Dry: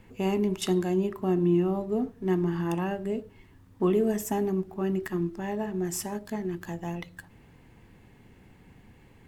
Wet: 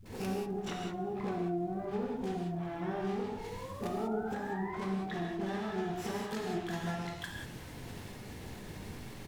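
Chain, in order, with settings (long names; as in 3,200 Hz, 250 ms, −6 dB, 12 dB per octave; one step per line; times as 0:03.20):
one scale factor per block 3 bits
downward expander −52 dBFS
treble cut that deepens with the level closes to 450 Hz, closed at −22 dBFS
brickwall limiter −27 dBFS, peak gain reduction 11.5 dB
downward compressor 12 to 1, threshold −42 dBFS, peak gain reduction 12.5 dB
on a send: echo with shifted repeats 257 ms, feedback 47%, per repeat −43 Hz, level −23.5 dB
on the sum: sound drawn into the spectrogram rise, 0:03.02–0:04.79, 360–1,100 Hz −54 dBFS
pitch-shifted copies added +12 semitones −5 dB
all-pass dispersion highs, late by 55 ms, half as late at 390 Hz
surface crackle 510 per second −66 dBFS
reverb whose tail is shaped and stops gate 220 ms flat, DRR −1 dB
level +5 dB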